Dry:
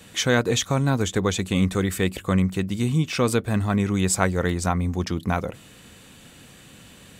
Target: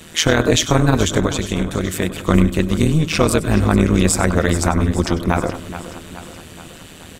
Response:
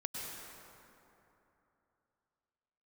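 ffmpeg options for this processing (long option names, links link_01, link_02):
-filter_complex "[0:a]asettb=1/sr,asplit=3[link_01][link_02][link_03];[link_01]atrim=end=1.254[link_04];[link_02]atrim=start=1.25:end=2.25,asetpts=PTS-STARTPTS,afade=type=in:duration=0.004:curve=qsin,afade=type=out:start_time=0.996:duration=0.004:curve=qsin,acompressor=threshold=-25dB:ratio=6[link_05];[link_03]atrim=start=2.246[link_06];[link_04][link_05]acrossfade=duration=0.004:curve1=hsin:curve2=qsin[link_07];[link_07][link_06]acrossfade=duration=0.004:curve1=qsin:curve2=hsin,tremolo=f=160:d=0.919,aecho=1:1:424|848|1272|1696|2120|2544:0.188|0.107|0.0612|0.0349|0.0199|0.0113[link_08];[1:a]atrim=start_sample=2205,atrim=end_sample=4410[link_09];[link_08][link_09]afir=irnorm=-1:irlink=0,alimiter=level_in=15.5dB:limit=-1dB:release=50:level=0:latency=1,volume=-1dB"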